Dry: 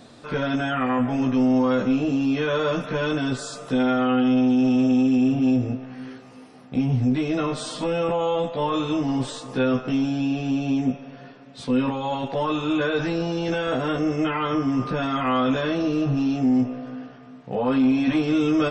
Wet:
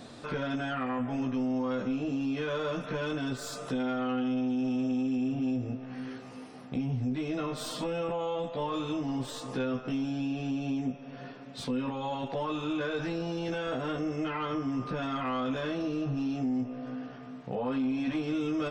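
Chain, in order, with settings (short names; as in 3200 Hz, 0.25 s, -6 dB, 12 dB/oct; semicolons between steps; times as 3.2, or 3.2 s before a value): tracing distortion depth 0.022 ms; compressor 2:1, threshold -37 dBFS, peak gain reduction 11.5 dB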